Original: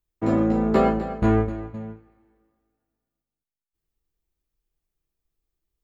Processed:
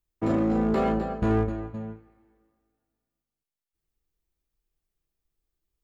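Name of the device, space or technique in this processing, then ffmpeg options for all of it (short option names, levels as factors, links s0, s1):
limiter into clipper: -filter_complex "[0:a]alimiter=limit=0.188:level=0:latency=1:release=11,asoftclip=type=hard:threshold=0.15,asettb=1/sr,asplit=3[s0][s1][s2];[s0]atrim=end=0.954[s3];[s1]atrim=start=0.95:end=1.92,asetpts=PTS-STARTPTS,afade=t=in:d=0.004:c=qsin,afade=t=out:st=0.966:d=0.004:c=qsin,bandreject=f=2100:w=9.6[s4];[s2]atrim=start=1.916[s5];[s3][s4]acrossfade=d=0.004:c1=hsin:c2=qsin[s6];[s6][s5]acrossfade=d=0.004:c1=qsin:c2=hsin,volume=0.891"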